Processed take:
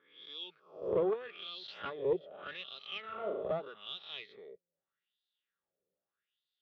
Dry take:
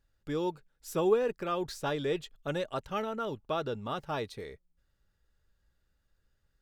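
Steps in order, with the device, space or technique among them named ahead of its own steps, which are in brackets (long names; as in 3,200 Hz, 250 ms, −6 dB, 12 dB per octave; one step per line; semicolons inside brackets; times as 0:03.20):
peak hold with a rise ahead of every peak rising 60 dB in 0.72 s
wah-wah guitar rig (LFO wah 0.81 Hz 490–4,000 Hz, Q 4; tube saturation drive 27 dB, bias 0.75; loudspeaker in its box 91–4,500 Hz, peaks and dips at 180 Hz +8 dB, 390 Hz +7 dB, 900 Hz −7 dB, 1,600 Hz −6 dB, 3,300 Hz +8 dB)
0:03.01–0:03.43: flutter between parallel walls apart 6.3 metres, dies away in 0.65 s
level +5 dB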